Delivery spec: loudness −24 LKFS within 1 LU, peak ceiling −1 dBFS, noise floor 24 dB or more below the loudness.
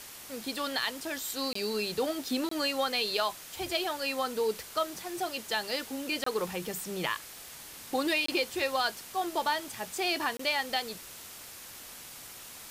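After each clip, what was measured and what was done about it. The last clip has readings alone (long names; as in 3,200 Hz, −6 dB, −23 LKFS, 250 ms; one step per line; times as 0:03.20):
number of dropouts 5; longest dropout 24 ms; background noise floor −47 dBFS; target noise floor −56 dBFS; integrated loudness −31.5 LKFS; sample peak −16.0 dBFS; target loudness −24.0 LKFS
→ repair the gap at 0:01.53/0:02.49/0:06.24/0:08.26/0:10.37, 24 ms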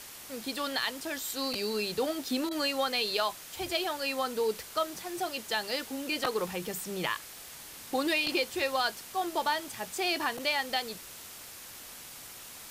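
number of dropouts 0; background noise floor −47 dBFS; target noise floor −56 dBFS
→ broadband denoise 9 dB, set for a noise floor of −47 dBFS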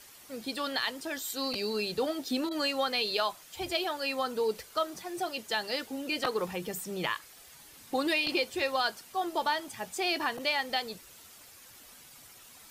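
background noise floor −53 dBFS; target noise floor −56 dBFS
→ broadband denoise 6 dB, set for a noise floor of −53 dBFS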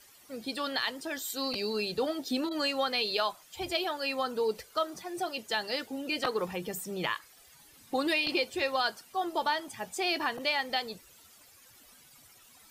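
background noise floor −58 dBFS; integrated loudness −32.0 LKFS; sample peak −16.5 dBFS; target loudness −24.0 LKFS
→ level +8 dB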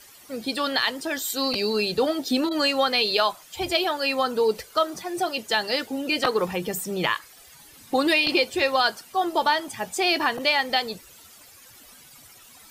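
integrated loudness −24.0 LKFS; sample peak −8.5 dBFS; background noise floor −50 dBFS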